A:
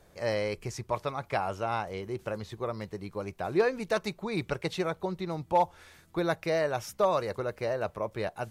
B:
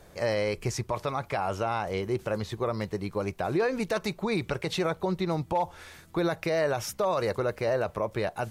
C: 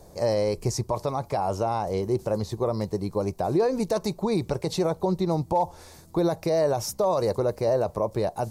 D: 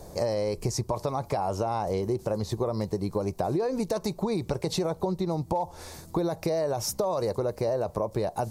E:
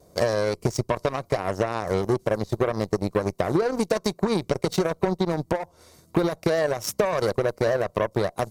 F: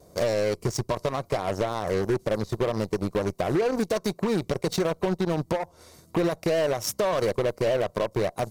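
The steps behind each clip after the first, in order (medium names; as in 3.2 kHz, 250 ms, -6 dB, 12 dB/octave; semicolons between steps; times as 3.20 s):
peak limiter -25.5 dBFS, peak gain reduction 10 dB; trim +6.5 dB
high-order bell 2.1 kHz -12.5 dB; trim +4 dB
compression, threshold -30 dBFS, peak gain reduction 11.5 dB; trim +5 dB
comb of notches 840 Hz; vibrato 0.47 Hz 7.1 cents; Chebyshev shaper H 3 -36 dB, 7 -19 dB, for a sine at -15 dBFS; trim +6.5 dB
overload inside the chain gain 20 dB; trim +1.5 dB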